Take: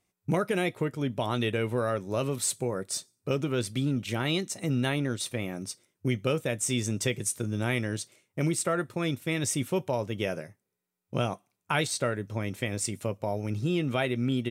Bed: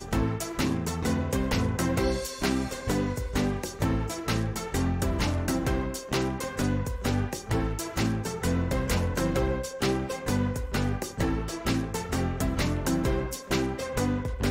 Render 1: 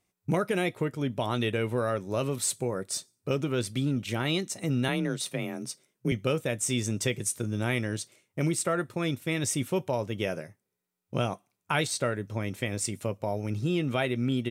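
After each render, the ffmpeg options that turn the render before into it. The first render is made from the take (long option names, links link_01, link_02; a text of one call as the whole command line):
ffmpeg -i in.wav -filter_complex "[0:a]asettb=1/sr,asplit=3[link_01][link_02][link_03];[link_01]atrim=end=4.884[link_04];[link_02]atrim=start=4.88:end=6.12,asetpts=PTS-STARTPTS,afade=type=in:duration=0.004:curve=qsin,afade=type=out:start_time=1.236:duration=0.004:curve=qsin,afreqshift=29[link_05];[link_03]atrim=start=6.116[link_06];[link_04][link_05]acrossfade=duration=0.004:curve1=hsin:curve2=qsin[link_07];[link_07][link_06]acrossfade=duration=0.004:curve1=qsin:curve2=hsin" out.wav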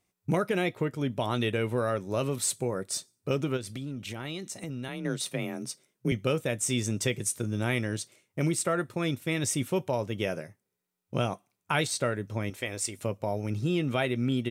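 ffmpeg -i in.wav -filter_complex "[0:a]asettb=1/sr,asplit=3[link_01][link_02][link_03];[link_01]atrim=end=0.494[link_04];[link_02]atrim=start=0.49:end=0.92,asetpts=PTS-STARTPTS,afade=type=in:duration=0.004:curve=qsin,afade=type=out:start_time=0.426:duration=0.004:curve=qsin,equalizer=frequency=9700:width_type=o:width=0.64:gain=-7[link_05];[link_03]atrim=start=0.916[link_06];[link_04][link_05]acrossfade=duration=0.004:curve1=hsin:curve2=qsin[link_07];[link_07][link_06]acrossfade=duration=0.004:curve1=qsin:curve2=hsin,asplit=3[link_08][link_09][link_10];[link_08]afade=type=out:start_time=3.56:duration=0.02[link_11];[link_09]acompressor=threshold=-34dB:ratio=4:attack=3.2:release=140:knee=1:detection=peak,afade=type=in:start_time=3.56:duration=0.02,afade=type=out:start_time=5.04:duration=0.02[link_12];[link_10]afade=type=in:start_time=5.04:duration=0.02[link_13];[link_11][link_12][link_13]amix=inputs=3:normalize=0,asettb=1/sr,asplit=3[link_14][link_15][link_16];[link_14]atrim=end=12.504[link_17];[link_15]atrim=start=12.5:end=12.99,asetpts=PTS-STARTPTS,afade=type=in:duration=0.004:curve=qsin,afade=type=out:start_time=0.486:duration=0.004:curve=qsin,equalizer=frequency=160:width_type=o:width=1.2:gain=-14.5[link_18];[link_16]atrim=start=12.986[link_19];[link_17][link_18]acrossfade=duration=0.004:curve1=hsin:curve2=qsin[link_20];[link_20][link_19]acrossfade=duration=0.004:curve1=qsin:curve2=hsin" out.wav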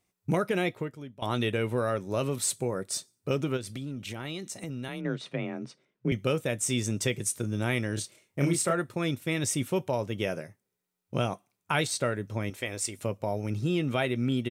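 ffmpeg -i in.wav -filter_complex "[0:a]asettb=1/sr,asplit=3[link_01][link_02][link_03];[link_01]atrim=end=5.014[link_04];[link_02]atrim=start=5.01:end=6.12,asetpts=PTS-STARTPTS,afade=type=in:duration=0.004:curve=qsin,afade=type=out:start_time=1.106:duration=0.004:curve=qsin,lowpass=2800[link_05];[link_03]atrim=start=6.116[link_06];[link_04][link_05]acrossfade=duration=0.004:curve1=hsin:curve2=qsin[link_07];[link_07][link_06]acrossfade=duration=0.004:curve1=qsin:curve2=hsin,asplit=3[link_08][link_09][link_10];[link_08]afade=type=out:start_time=7.96:duration=0.02[link_11];[link_09]asplit=2[link_12][link_13];[link_13]adelay=29,volume=-3.5dB[link_14];[link_12][link_14]amix=inputs=2:normalize=0,afade=type=in:start_time=7.96:duration=0.02,afade=type=out:start_time=8.72:duration=0.02[link_15];[link_10]afade=type=in:start_time=8.72:duration=0.02[link_16];[link_11][link_15][link_16]amix=inputs=3:normalize=0,asplit=2[link_17][link_18];[link_17]atrim=end=1.22,asetpts=PTS-STARTPTS,afade=type=out:start_time=0.69:duration=0.53:curve=qua:silence=0.141254[link_19];[link_18]atrim=start=1.22,asetpts=PTS-STARTPTS,afade=type=in:duration=0.004:curve=hsin:silence=0.141254[link_20];[link_19][link_20]concat=n=2:v=0:a=1" out.wav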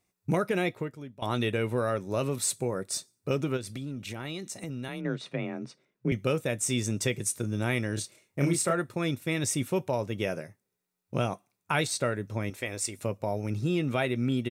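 ffmpeg -i in.wav -af "bandreject=frequency=3100:width=13" out.wav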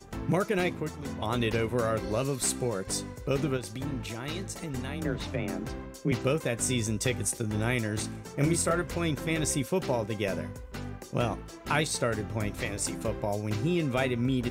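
ffmpeg -i in.wav -i bed.wav -filter_complex "[1:a]volume=-11dB[link_01];[0:a][link_01]amix=inputs=2:normalize=0" out.wav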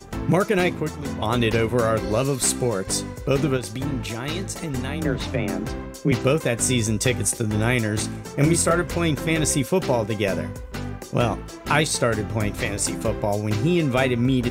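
ffmpeg -i in.wav -af "volume=7.5dB" out.wav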